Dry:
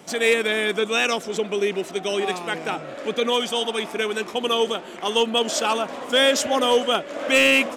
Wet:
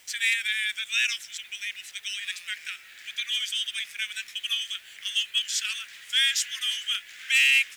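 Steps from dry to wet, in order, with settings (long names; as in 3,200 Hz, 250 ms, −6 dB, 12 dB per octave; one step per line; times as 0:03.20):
Butterworth high-pass 1,700 Hz 48 dB per octave
bit reduction 9 bits
level −1.5 dB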